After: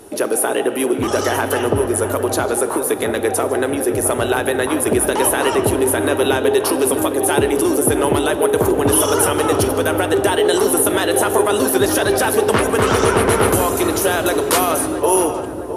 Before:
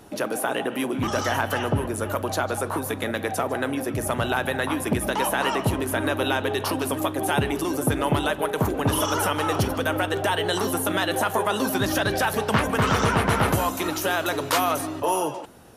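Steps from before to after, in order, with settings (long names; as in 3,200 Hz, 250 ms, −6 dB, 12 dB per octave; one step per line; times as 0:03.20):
graphic EQ with 15 bands 160 Hz −7 dB, 400 Hz +10 dB, 10,000 Hz +11 dB
on a send: feedback echo with a low-pass in the loop 664 ms, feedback 76%, low-pass 1,100 Hz, level −9.5 dB
on the sum: comb and all-pass reverb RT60 2.2 s, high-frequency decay 0.7×, pre-delay 20 ms, DRR 13.5 dB
level +3.5 dB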